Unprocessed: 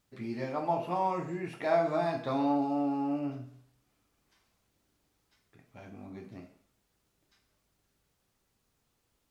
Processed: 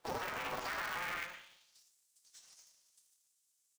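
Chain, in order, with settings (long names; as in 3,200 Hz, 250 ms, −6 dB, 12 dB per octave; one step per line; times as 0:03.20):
high-frequency loss of the air 160 metres
downward compressor 20 to 1, threshold −42 dBFS, peak gain reduction 20.5 dB
high-pass filter 180 Hz 12 dB per octave
repeating echo 242 ms, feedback 39%, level −16 dB
four-comb reverb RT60 3.6 s, combs from 33 ms, DRR 4 dB
phase-vocoder pitch shift with formants kept −12 semitones
high-pass filter sweep 240 Hz → 3,000 Hz, 0:01.47–0:04.83
change of speed 2.46×
brickwall limiter −37.5 dBFS, peak gain reduction 7 dB
ring modulator with a square carrier 180 Hz
level +6.5 dB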